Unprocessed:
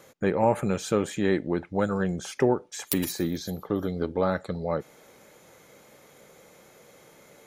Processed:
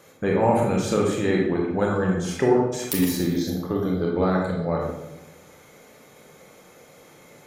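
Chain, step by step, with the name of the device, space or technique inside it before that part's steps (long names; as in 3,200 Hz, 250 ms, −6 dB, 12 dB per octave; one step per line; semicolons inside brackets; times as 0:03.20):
bathroom (convolution reverb RT60 0.95 s, pre-delay 23 ms, DRR −1.5 dB)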